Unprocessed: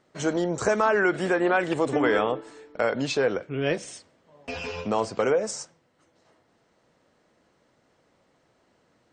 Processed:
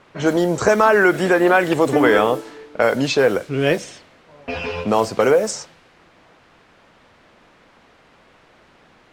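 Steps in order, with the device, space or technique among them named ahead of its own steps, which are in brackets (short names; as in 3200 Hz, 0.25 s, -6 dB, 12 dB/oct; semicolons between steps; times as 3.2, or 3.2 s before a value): cassette deck with a dynamic noise filter (white noise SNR 24 dB; low-pass opened by the level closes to 1800 Hz, open at -20.5 dBFS); gain +8 dB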